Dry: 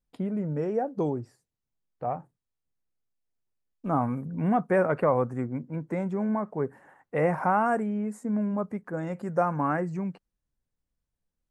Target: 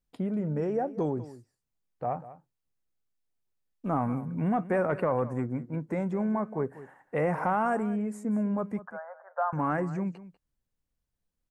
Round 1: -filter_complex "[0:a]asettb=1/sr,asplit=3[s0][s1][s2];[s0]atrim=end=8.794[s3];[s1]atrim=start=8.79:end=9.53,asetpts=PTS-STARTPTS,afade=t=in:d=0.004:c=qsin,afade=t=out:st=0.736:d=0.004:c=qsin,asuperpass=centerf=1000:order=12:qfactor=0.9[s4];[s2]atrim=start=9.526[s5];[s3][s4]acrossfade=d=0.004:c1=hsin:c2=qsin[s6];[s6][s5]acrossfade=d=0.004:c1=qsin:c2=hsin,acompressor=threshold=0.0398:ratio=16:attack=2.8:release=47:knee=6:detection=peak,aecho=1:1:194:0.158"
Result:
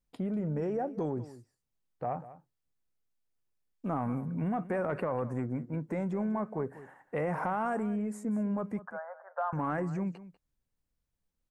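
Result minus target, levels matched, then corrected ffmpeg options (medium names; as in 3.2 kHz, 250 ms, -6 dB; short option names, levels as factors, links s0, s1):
compression: peak gain reduction +6 dB
-filter_complex "[0:a]asettb=1/sr,asplit=3[s0][s1][s2];[s0]atrim=end=8.794[s3];[s1]atrim=start=8.79:end=9.53,asetpts=PTS-STARTPTS,afade=t=in:d=0.004:c=qsin,afade=t=out:st=0.736:d=0.004:c=qsin,asuperpass=centerf=1000:order=12:qfactor=0.9[s4];[s2]atrim=start=9.526[s5];[s3][s4]acrossfade=d=0.004:c1=hsin:c2=qsin[s6];[s6][s5]acrossfade=d=0.004:c1=qsin:c2=hsin,acompressor=threshold=0.0841:ratio=16:attack=2.8:release=47:knee=6:detection=peak,aecho=1:1:194:0.158"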